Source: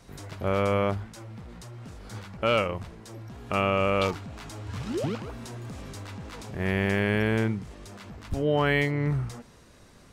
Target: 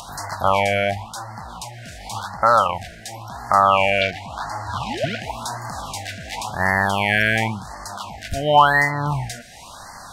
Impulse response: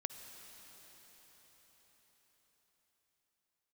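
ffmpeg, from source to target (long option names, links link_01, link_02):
-filter_complex "[0:a]lowshelf=frequency=590:width_type=q:width=3:gain=-11.5,asettb=1/sr,asplit=3[link_01][link_02][link_03];[link_01]atrim=end=4.014[link_04];[link_02]atrim=start=4.01:end=5.22,asetpts=PTS-STARTPTS,afade=type=in:duration=0.004:curve=qsin,afade=type=out:start_time=1.206:duration=0.004:curve=qsin,acrossover=split=4100[link_05][link_06];[link_06]acompressor=threshold=-59dB:ratio=4:attack=1:release=60[link_07];[link_05][link_07]amix=inputs=2:normalize=0[link_08];[link_03]atrim=start=5.216[link_09];[link_04][link_08]acrossfade=duration=0.004:curve1=hsin:curve2=qsin[link_10];[link_10][link_09]acrossfade=duration=0.004:curve1=qsin:curve2=hsin,asplit=2[link_11][link_12];[link_12]alimiter=limit=-19.5dB:level=0:latency=1:release=380,volume=2.5dB[link_13];[link_11][link_13]amix=inputs=2:normalize=0,acompressor=mode=upward:threshold=-39dB:ratio=2.5,afftfilt=real='re*(1-between(b*sr/1024,990*pow(3000/990,0.5+0.5*sin(2*PI*0.93*pts/sr))/1.41,990*pow(3000/990,0.5+0.5*sin(2*PI*0.93*pts/sr))*1.41))':imag='im*(1-between(b*sr/1024,990*pow(3000/990,0.5+0.5*sin(2*PI*0.93*pts/sr))/1.41,990*pow(3000/990,0.5+0.5*sin(2*PI*0.93*pts/sr))*1.41))':win_size=1024:overlap=0.75,volume=7.5dB"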